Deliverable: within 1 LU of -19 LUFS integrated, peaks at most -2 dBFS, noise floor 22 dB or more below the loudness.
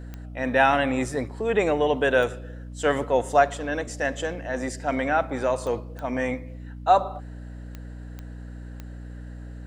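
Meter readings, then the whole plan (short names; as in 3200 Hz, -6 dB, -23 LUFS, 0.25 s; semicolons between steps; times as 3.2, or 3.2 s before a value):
clicks 7; hum 60 Hz; harmonics up to 300 Hz; hum level -36 dBFS; loudness -24.5 LUFS; peak -6.0 dBFS; loudness target -19.0 LUFS
-> de-click; de-hum 60 Hz, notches 5; gain +5.5 dB; limiter -2 dBFS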